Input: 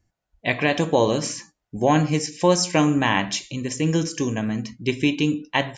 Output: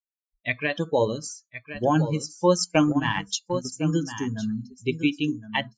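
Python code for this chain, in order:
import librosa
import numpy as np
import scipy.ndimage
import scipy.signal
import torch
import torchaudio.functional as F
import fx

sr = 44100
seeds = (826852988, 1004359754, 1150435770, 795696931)

y = fx.bin_expand(x, sr, power=2.0)
y = fx.notch(y, sr, hz=750.0, q=19.0)
y = y + 10.0 ** (-11.0 / 20.0) * np.pad(y, (int(1061 * sr / 1000.0), 0))[:len(y)]
y = fx.noise_reduce_blind(y, sr, reduce_db=23)
y = fx.transient(y, sr, attack_db=5, sustain_db=-9, at=(2.57, 3.72), fade=0.02)
y = fx.high_shelf(y, sr, hz=7400.0, db=-7.0, at=(4.27, 5.26))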